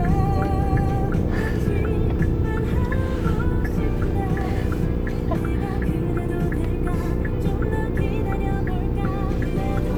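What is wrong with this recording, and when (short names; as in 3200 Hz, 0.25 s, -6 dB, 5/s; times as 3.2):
hum 60 Hz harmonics 8 -26 dBFS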